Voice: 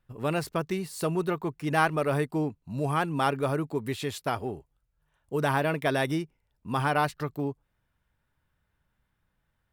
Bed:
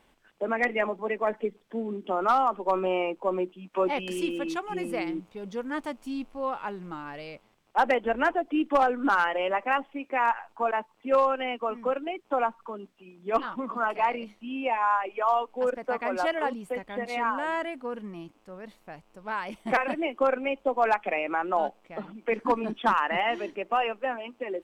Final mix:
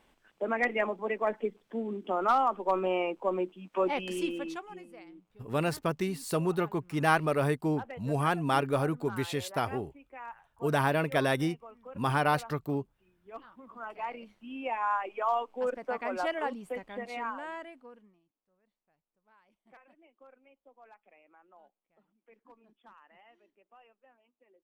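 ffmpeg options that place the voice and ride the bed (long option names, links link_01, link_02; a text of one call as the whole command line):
ffmpeg -i stem1.wav -i stem2.wav -filter_complex "[0:a]adelay=5300,volume=-1dB[link_01];[1:a]volume=12.5dB,afade=type=out:start_time=4.23:duration=0.63:silence=0.141254,afade=type=in:start_time=13.58:duration=1.45:silence=0.177828,afade=type=out:start_time=16.72:duration=1.48:silence=0.0375837[link_02];[link_01][link_02]amix=inputs=2:normalize=0" out.wav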